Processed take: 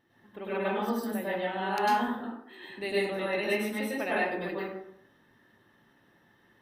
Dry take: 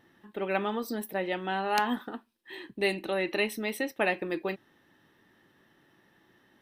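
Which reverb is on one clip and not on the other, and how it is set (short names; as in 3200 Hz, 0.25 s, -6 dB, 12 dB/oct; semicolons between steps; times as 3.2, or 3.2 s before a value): plate-style reverb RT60 0.76 s, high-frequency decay 0.5×, pre-delay 90 ms, DRR -8 dB; gain -8.5 dB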